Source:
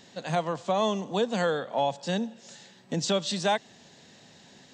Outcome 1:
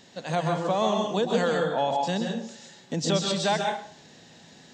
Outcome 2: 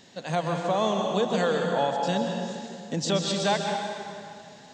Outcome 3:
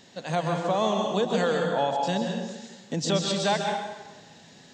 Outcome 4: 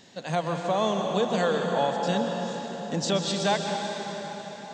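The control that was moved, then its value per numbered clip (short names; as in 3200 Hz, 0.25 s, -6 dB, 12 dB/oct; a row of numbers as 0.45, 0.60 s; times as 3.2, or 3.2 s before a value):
plate-style reverb, RT60: 0.52, 2.4, 1.2, 5.1 s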